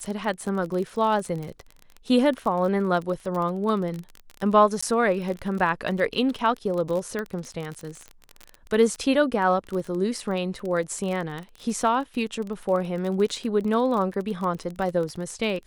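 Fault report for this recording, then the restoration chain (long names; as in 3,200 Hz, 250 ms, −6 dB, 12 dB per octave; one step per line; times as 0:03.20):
surface crackle 27 per second −29 dBFS
0:04.81–0:04.83: drop-out 15 ms
0:07.19: click −17 dBFS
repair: click removal
repair the gap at 0:04.81, 15 ms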